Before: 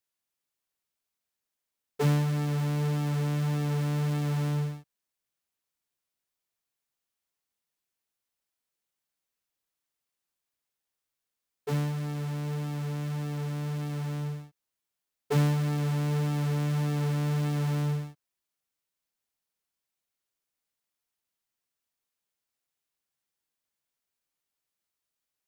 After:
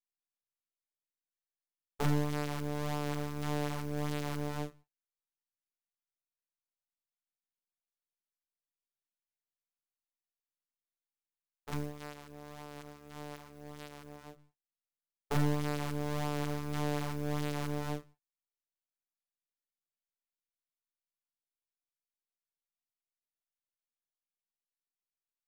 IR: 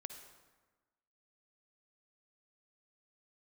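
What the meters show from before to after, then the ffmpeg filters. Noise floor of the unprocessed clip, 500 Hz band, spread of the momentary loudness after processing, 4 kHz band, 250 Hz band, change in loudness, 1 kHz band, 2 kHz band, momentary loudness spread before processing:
under -85 dBFS, -3.0 dB, 17 LU, -3.0 dB, -6.5 dB, -6.5 dB, -1.5 dB, -2.5 dB, 7 LU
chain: -filter_complex "[1:a]atrim=start_sample=2205,atrim=end_sample=3528,asetrate=66150,aresample=44100[s0];[0:a][s0]afir=irnorm=-1:irlink=0,aeval=exprs='max(val(0),0)':c=same,aeval=exprs='0.0596*(cos(1*acos(clip(val(0)/0.0596,-1,1)))-cos(1*PI/2))+0.0106*(cos(7*acos(clip(val(0)/0.0596,-1,1)))-cos(7*PI/2))':c=same,volume=1.88"

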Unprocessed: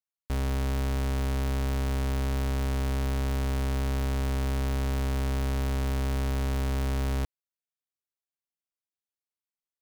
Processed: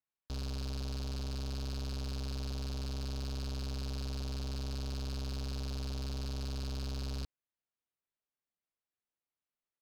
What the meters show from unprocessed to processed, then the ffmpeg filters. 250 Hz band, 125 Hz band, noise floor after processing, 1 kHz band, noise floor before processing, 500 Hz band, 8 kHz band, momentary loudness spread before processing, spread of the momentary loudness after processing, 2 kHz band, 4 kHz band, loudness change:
-10.5 dB, -10.0 dB, under -85 dBFS, -14.0 dB, under -85 dBFS, -12.0 dB, -7.0 dB, 0 LU, 0 LU, -14.0 dB, -2.0 dB, -9.5 dB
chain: -af "aresample=11025,aeval=exprs='(mod(23.7*val(0)+1,2)-1)/23.7':c=same,aresample=44100,highshelf=f=2400:g=-6,acontrast=51,lowpass=3700,volume=44.7,asoftclip=hard,volume=0.0224,volume=0.631"

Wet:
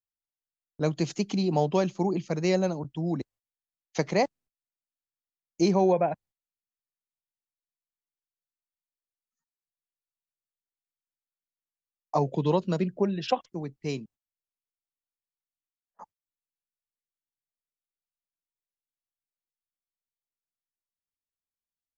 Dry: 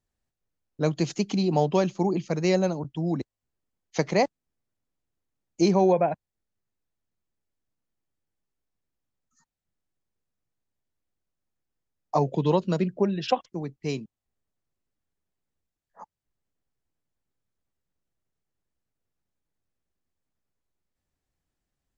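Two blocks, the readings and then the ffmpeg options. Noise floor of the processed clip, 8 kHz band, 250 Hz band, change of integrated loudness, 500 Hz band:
under -85 dBFS, no reading, -2.0 dB, -2.0 dB, -2.0 dB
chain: -af "agate=range=0.0708:threshold=0.00282:ratio=16:detection=peak,volume=0.794"

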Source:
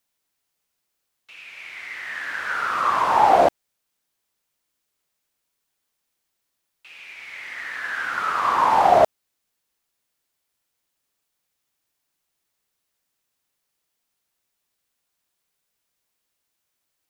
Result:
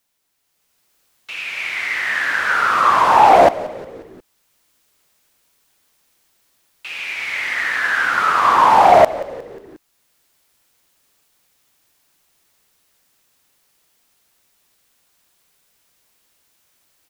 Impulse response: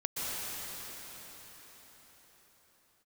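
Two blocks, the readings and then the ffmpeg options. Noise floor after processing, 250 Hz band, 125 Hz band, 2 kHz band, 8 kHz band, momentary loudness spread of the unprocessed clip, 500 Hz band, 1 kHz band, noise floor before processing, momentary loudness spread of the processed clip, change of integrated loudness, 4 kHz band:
-66 dBFS, +6.0 dB, +6.0 dB, +9.5 dB, no reading, 20 LU, +6.0 dB, +6.5 dB, -78 dBFS, 19 LU, +5.5 dB, +9.0 dB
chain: -filter_complex "[0:a]aeval=exprs='0.668*sin(PI/2*1.41*val(0)/0.668)':c=same,asplit=5[s0][s1][s2][s3][s4];[s1]adelay=179,afreqshift=-80,volume=0.141[s5];[s2]adelay=358,afreqshift=-160,volume=0.0724[s6];[s3]adelay=537,afreqshift=-240,volume=0.0367[s7];[s4]adelay=716,afreqshift=-320,volume=0.0188[s8];[s0][s5][s6][s7][s8]amix=inputs=5:normalize=0,dynaudnorm=f=200:g=7:m=2.82,volume=0.891"

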